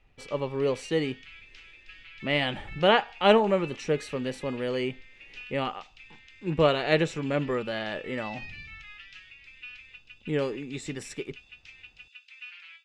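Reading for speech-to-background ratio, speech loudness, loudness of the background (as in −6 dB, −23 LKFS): 18.0 dB, −28.0 LKFS, −46.0 LKFS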